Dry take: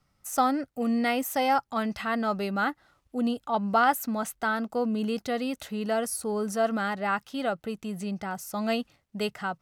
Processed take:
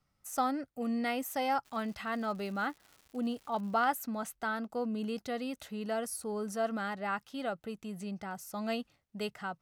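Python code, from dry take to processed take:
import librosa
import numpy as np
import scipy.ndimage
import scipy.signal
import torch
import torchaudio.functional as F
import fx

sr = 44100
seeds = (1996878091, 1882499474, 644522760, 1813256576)

y = fx.dmg_crackle(x, sr, seeds[0], per_s=230.0, level_db=-39.0, at=(1.64, 3.89), fade=0.02)
y = y * librosa.db_to_amplitude(-7.0)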